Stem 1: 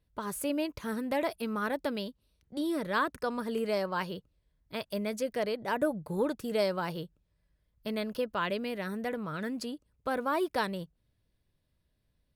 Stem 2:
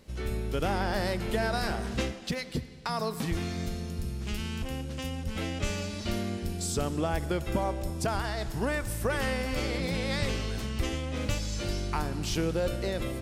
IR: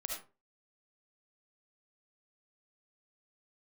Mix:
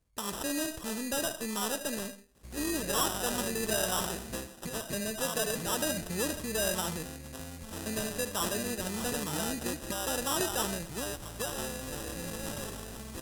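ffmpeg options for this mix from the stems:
-filter_complex "[0:a]asoftclip=type=tanh:threshold=0.0447,volume=0.596,asplit=2[s0][s1];[s1]volume=0.631[s2];[1:a]acrossover=split=160|3000[s3][s4][s5];[s3]acompressor=threshold=0.0126:ratio=6[s6];[s6][s4][s5]amix=inputs=3:normalize=0,adelay=2350,volume=0.398[s7];[2:a]atrim=start_sample=2205[s8];[s2][s8]afir=irnorm=-1:irlink=0[s9];[s0][s7][s9]amix=inputs=3:normalize=0,acrusher=samples=20:mix=1:aa=0.000001,equalizer=f=10000:t=o:w=1.9:g=13.5"

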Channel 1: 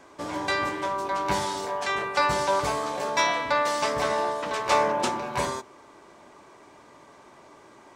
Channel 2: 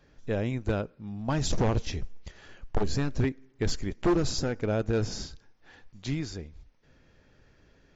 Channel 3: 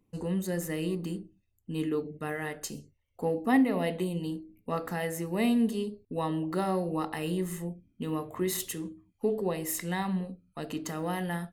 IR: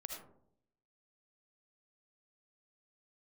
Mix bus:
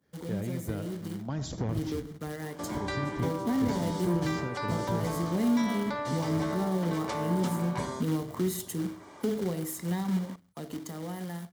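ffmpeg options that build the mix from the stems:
-filter_complex "[0:a]adelay=2400,volume=0.944,asplit=2[s0][s1];[s1]volume=0.531[s2];[1:a]highpass=77,agate=range=0.0224:threshold=0.00158:ratio=3:detection=peak,volume=0.473,asplit=2[s3][s4];[s4]volume=0.668[s5];[2:a]equalizer=f=2000:w=0.74:g=-5,dynaudnorm=f=730:g=7:m=4.22,acrusher=bits=2:mode=log:mix=0:aa=0.000001,volume=0.631[s6];[s0][s6]amix=inputs=2:normalize=0,highpass=79,alimiter=limit=0.178:level=0:latency=1:release=84,volume=1[s7];[3:a]atrim=start_sample=2205[s8];[s2][s5]amix=inputs=2:normalize=0[s9];[s9][s8]afir=irnorm=-1:irlink=0[s10];[s3][s7][s10]amix=inputs=3:normalize=0,bandreject=f=2600:w=8.6,acrossover=split=290[s11][s12];[s12]acompressor=threshold=0.00708:ratio=2[s13];[s11][s13]amix=inputs=2:normalize=0"

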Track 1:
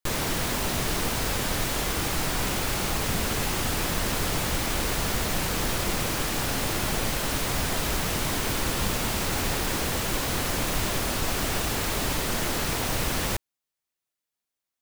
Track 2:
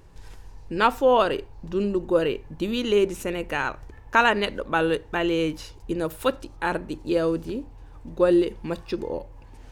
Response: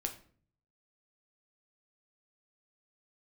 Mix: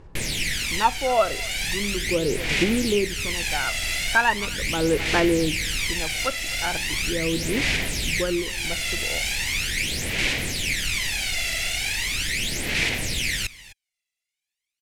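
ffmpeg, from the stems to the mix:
-filter_complex "[0:a]highshelf=f=1600:t=q:w=3:g=10.5,adelay=100,volume=0.316,asplit=2[s0][s1];[s1]volume=0.119[s2];[1:a]volume=0.562,asplit=3[s3][s4][s5];[s4]volume=0.0944[s6];[s5]apad=whole_len=657793[s7];[s0][s7]sidechaincompress=threshold=0.0447:ratio=4:attack=37:release=723[s8];[s2][s6]amix=inputs=2:normalize=0,aecho=0:1:256:1[s9];[s8][s3][s9]amix=inputs=3:normalize=0,lowpass=10000,aphaser=in_gain=1:out_gain=1:delay=1.5:decay=0.68:speed=0.39:type=sinusoidal"

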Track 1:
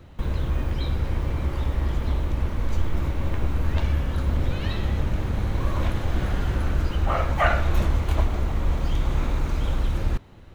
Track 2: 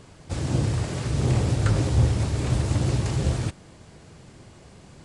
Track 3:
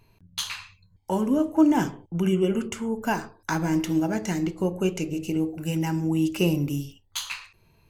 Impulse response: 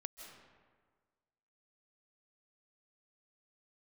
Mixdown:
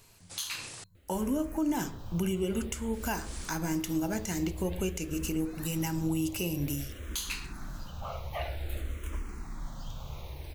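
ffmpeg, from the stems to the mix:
-filter_complex "[0:a]asplit=2[s0][s1];[s1]afreqshift=-0.51[s2];[s0][s2]amix=inputs=2:normalize=1,adelay=950,volume=0.224[s3];[1:a]highpass=f=1000:p=1,volume=0.251,asplit=3[s4][s5][s6];[s4]atrim=end=0.84,asetpts=PTS-STARTPTS,afade=t=out:st=0.836:d=0.004:c=hsin[s7];[s5]atrim=start=0.84:end=2.93,asetpts=PTS-STARTPTS,volume=0[s8];[s6]atrim=start=2.93,asetpts=PTS-STARTPTS,afade=t=in:d=0.004:c=hsin[s9];[s7][s8][s9]concat=n=3:v=0:a=1[s10];[2:a]volume=0.708,asplit=2[s11][s12];[s12]apad=whole_len=222434[s13];[s10][s13]sidechaincompress=threshold=0.00891:ratio=8:attack=16:release=126[s14];[s3][s14][s11]amix=inputs=3:normalize=0,crystalizer=i=2.5:c=0,alimiter=limit=0.0841:level=0:latency=1:release=262"

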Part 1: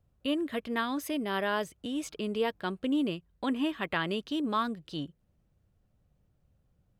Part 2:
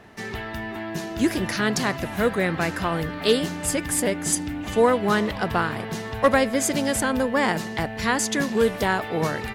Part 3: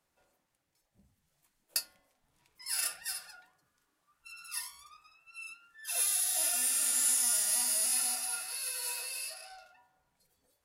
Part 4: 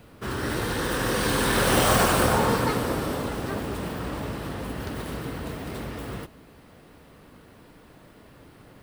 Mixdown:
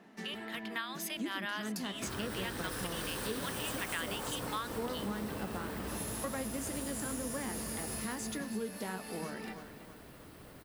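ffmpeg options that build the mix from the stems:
-filter_complex "[0:a]highpass=1400,dynaudnorm=f=150:g=9:m=2.82,volume=1[s0];[1:a]lowshelf=f=140:t=q:w=3:g=-13,flanger=delay=5.2:depth=7:regen=62:speed=1.9:shape=triangular,volume=0.447,asplit=2[s1][s2];[s2]volume=0.168[s3];[2:a]volume=0.501[s4];[3:a]alimiter=limit=0.119:level=0:latency=1:release=340,crystalizer=i=1:c=0,adelay=1800,volume=0.596,asplit=2[s5][s6];[s6]volume=0.631[s7];[s3][s7]amix=inputs=2:normalize=0,aecho=0:1:325|650|975|1300|1625:1|0.39|0.152|0.0593|0.0231[s8];[s0][s1][s4][s5][s8]amix=inputs=5:normalize=0,acompressor=threshold=0.0126:ratio=3"

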